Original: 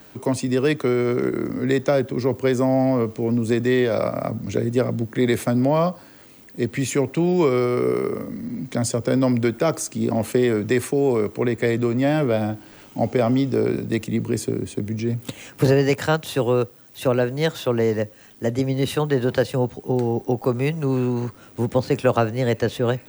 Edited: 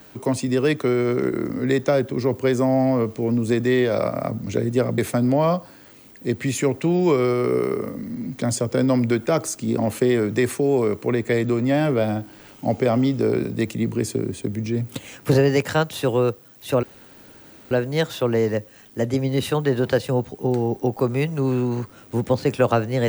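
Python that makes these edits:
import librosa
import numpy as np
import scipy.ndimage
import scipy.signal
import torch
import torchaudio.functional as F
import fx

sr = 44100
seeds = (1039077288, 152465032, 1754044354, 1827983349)

y = fx.edit(x, sr, fx.cut(start_s=4.98, length_s=0.33),
    fx.insert_room_tone(at_s=17.16, length_s=0.88), tone=tone)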